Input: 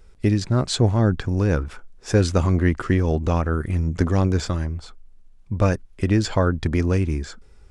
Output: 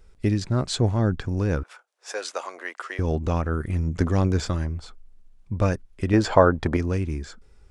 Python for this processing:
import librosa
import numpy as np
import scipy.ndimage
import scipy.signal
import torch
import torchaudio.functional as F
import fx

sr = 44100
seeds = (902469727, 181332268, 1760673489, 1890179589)

y = fx.peak_eq(x, sr, hz=770.0, db=12.5, octaves=2.5, at=(6.13, 6.77))
y = fx.rider(y, sr, range_db=4, speed_s=2.0)
y = fx.highpass(y, sr, hz=560.0, slope=24, at=(1.63, 2.99))
y = F.gain(torch.from_numpy(y), -4.5).numpy()